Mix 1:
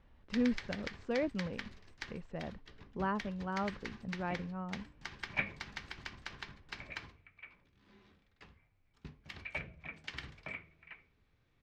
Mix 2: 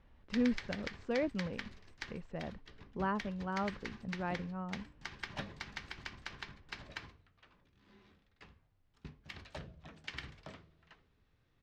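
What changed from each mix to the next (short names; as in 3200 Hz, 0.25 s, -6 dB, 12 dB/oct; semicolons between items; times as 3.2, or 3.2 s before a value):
second sound: remove synth low-pass 2300 Hz, resonance Q 16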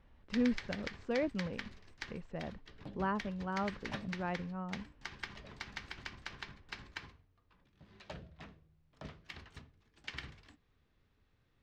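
second sound: entry -1.45 s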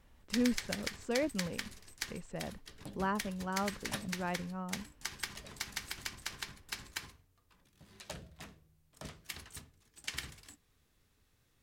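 master: remove air absorption 220 m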